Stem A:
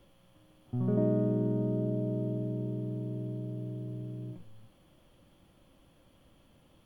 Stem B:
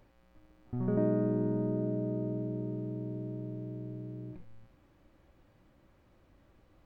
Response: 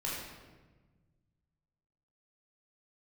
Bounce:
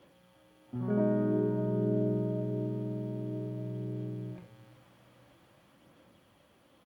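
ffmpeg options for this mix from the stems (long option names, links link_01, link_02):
-filter_complex "[0:a]aphaser=in_gain=1:out_gain=1:delay=4.3:decay=0.45:speed=0.5:type=sinusoidal,volume=-3dB,asplit=2[link_01][link_02];[link_02]volume=-13dB[link_03];[1:a]equalizer=frequency=290:width=1.2:gain=-11,dynaudnorm=framelen=310:gausssize=11:maxgain=5dB,adelay=23,volume=2.5dB[link_04];[2:a]atrim=start_sample=2205[link_05];[link_03][link_05]afir=irnorm=-1:irlink=0[link_06];[link_01][link_04][link_06]amix=inputs=3:normalize=0,highpass=160"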